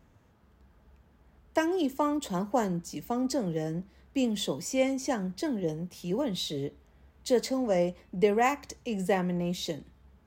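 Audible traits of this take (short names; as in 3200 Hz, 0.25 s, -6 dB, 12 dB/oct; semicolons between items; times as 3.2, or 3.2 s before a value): noise floor -62 dBFS; spectral tilt -5.0 dB/oct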